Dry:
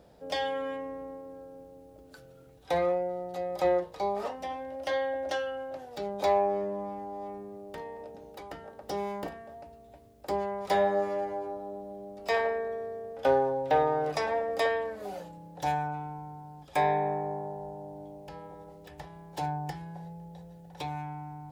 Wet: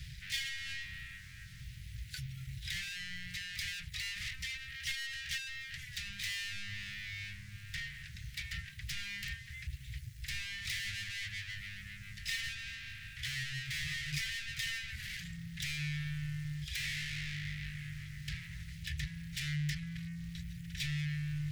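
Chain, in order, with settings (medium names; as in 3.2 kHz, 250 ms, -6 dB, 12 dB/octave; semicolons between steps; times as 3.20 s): saturation -30 dBFS, distortion -7 dB; reverb removal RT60 0.63 s; waveshaping leveller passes 5; Chebyshev band-stop 140–1900 Hz, order 4; treble shelf 6.6 kHz -8.5 dB; trim +2 dB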